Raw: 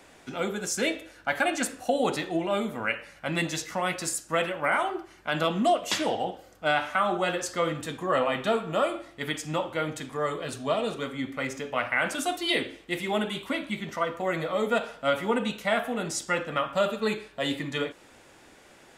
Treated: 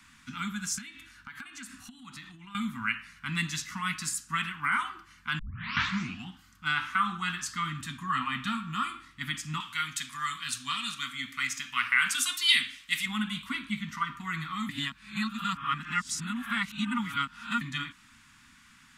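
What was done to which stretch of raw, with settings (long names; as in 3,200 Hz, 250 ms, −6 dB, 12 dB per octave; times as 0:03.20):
0:00.78–0:02.55: downward compressor 12 to 1, threshold −36 dBFS
0:05.39: tape start 0.89 s
0:09.60–0:13.06: tilt shelving filter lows −9.5 dB, about 1,200 Hz
0:14.69–0:17.61: reverse
whole clip: elliptic band-stop filter 240–1,100 Hz, stop band 80 dB; high-shelf EQ 8,100 Hz −4 dB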